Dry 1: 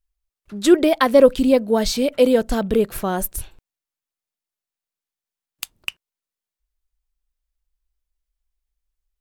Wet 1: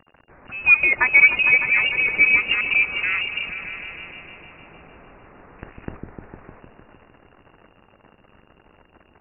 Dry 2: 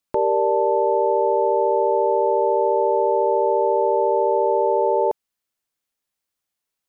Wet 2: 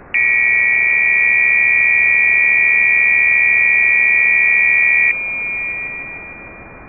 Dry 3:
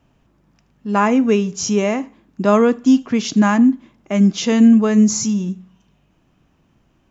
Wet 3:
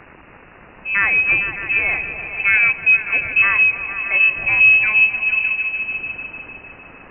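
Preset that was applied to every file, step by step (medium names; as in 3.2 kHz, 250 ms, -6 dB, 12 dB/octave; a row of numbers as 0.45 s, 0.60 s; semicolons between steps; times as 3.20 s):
zero-crossing glitches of -16 dBFS; frequency inversion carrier 2.8 kHz; delay with an opening low-pass 152 ms, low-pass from 400 Hz, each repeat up 1 oct, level -3 dB; peak normalisation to -3 dBFS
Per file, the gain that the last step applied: -2.0 dB, +5.5 dB, -2.0 dB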